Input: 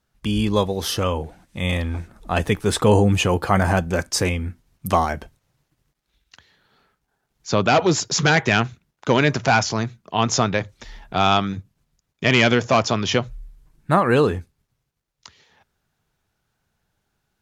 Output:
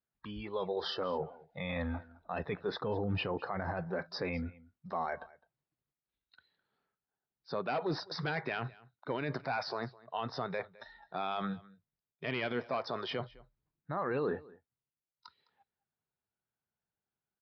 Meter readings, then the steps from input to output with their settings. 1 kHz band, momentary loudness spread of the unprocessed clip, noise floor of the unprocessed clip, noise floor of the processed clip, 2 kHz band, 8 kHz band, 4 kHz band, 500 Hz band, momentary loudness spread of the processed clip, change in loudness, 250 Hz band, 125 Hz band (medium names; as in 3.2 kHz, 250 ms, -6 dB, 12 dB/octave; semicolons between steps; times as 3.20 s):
-16.5 dB, 13 LU, -76 dBFS, under -85 dBFS, -17.5 dB, under -35 dB, -18.0 dB, -15.0 dB, 10 LU, -17.5 dB, -18.0 dB, -19.5 dB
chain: high-pass 160 Hz 6 dB/octave; spectral noise reduction 17 dB; treble shelf 2.8 kHz -9 dB; reverse; compression 4:1, threshold -27 dBFS, peak gain reduction 13 dB; reverse; peak limiter -23 dBFS, peak gain reduction 8.5 dB; on a send: delay 209 ms -22 dB; on the sum: resampled via 11.025 kHz; trim -2 dB